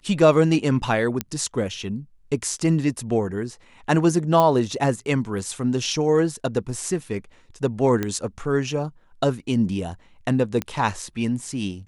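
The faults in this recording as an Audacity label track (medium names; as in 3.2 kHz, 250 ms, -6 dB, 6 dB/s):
1.210000	1.210000	pop -8 dBFS
4.400000	4.400000	pop -8 dBFS
8.030000	8.030000	pop -11 dBFS
10.620000	10.620000	pop -11 dBFS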